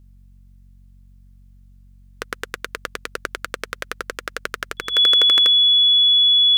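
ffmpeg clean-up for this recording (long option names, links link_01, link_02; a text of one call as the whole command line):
ffmpeg -i in.wav -af "bandreject=frequency=46.5:width_type=h:width=4,bandreject=frequency=93:width_type=h:width=4,bandreject=frequency=139.5:width_type=h:width=4,bandreject=frequency=186:width_type=h:width=4,bandreject=frequency=232.5:width_type=h:width=4,bandreject=frequency=3400:width=30" out.wav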